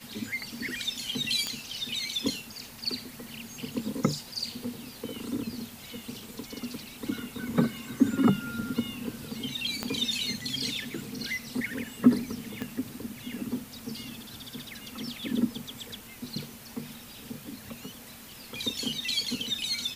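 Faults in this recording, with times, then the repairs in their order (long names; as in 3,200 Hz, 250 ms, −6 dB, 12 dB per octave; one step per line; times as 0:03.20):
0:01.47: click −15 dBFS
0:09.83: click −14 dBFS
0:12.62: click −19 dBFS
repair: click removal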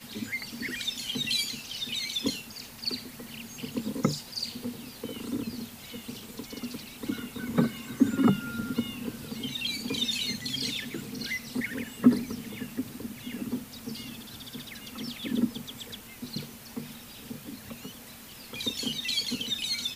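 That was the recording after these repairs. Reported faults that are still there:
0:09.83: click
0:12.62: click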